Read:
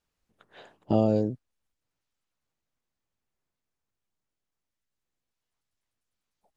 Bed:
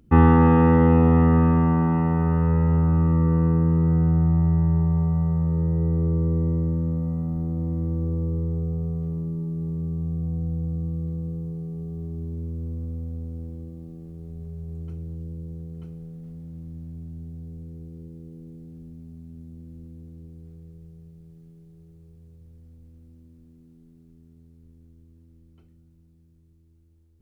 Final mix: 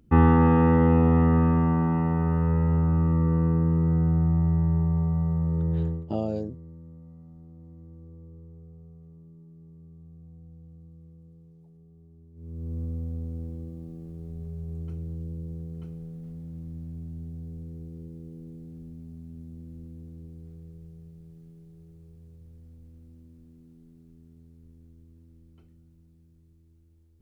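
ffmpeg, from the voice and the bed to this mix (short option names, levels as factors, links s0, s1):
-filter_complex "[0:a]adelay=5200,volume=0.501[s0];[1:a]volume=7.5,afade=t=out:st=5.81:d=0.25:silence=0.125893,afade=t=in:st=12.34:d=0.45:silence=0.0944061[s1];[s0][s1]amix=inputs=2:normalize=0"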